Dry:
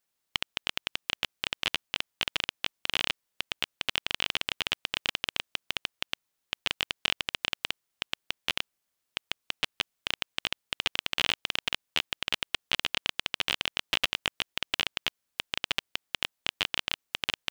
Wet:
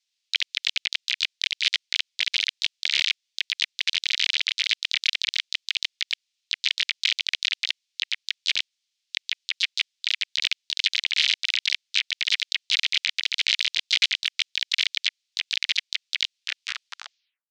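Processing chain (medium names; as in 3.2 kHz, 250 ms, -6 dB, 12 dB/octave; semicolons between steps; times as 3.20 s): tape stop on the ending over 1.27 s; Butterworth band-pass 4.2 kHz, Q 1.5; harmony voices -7 st -12 dB, -5 st -5 dB, +4 st -4 dB; trim +8 dB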